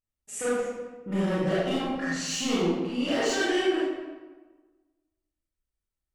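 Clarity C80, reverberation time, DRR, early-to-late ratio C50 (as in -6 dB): 0.5 dB, 1.3 s, -9.0 dB, -3.5 dB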